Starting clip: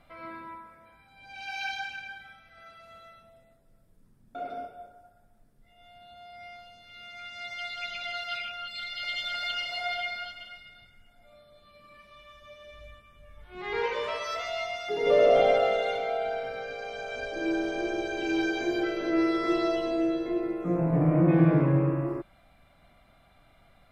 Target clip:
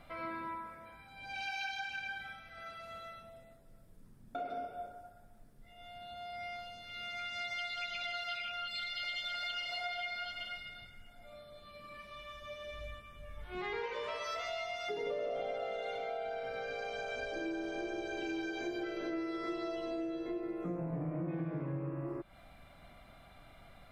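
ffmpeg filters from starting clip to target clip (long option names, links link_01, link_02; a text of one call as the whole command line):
ffmpeg -i in.wav -af "acompressor=threshold=-40dB:ratio=6,volume=3dB" out.wav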